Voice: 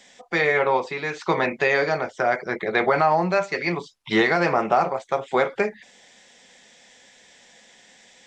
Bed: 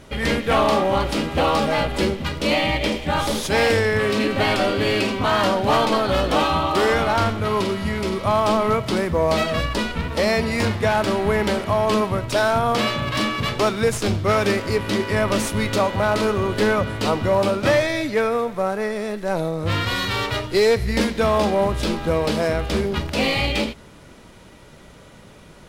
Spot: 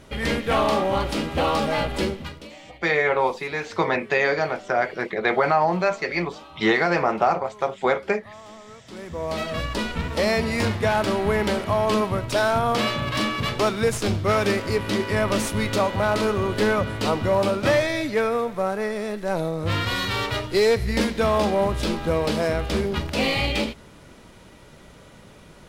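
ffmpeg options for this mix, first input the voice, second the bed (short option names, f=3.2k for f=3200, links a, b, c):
-filter_complex "[0:a]adelay=2500,volume=-0.5dB[a];[1:a]volume=20dB,afade=t=out:st=1.99:d=0.51:silence=0.0794328,afade=t=in:st=8.83:d=1.14:silence=0.0707946[b];[a][b]amix=inputs=2:normalize=0"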